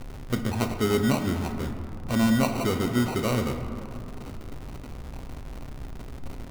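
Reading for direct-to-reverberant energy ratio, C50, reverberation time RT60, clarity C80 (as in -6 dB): 5.5 dB, 7.5 dB, 2.8 s, 8.5 dB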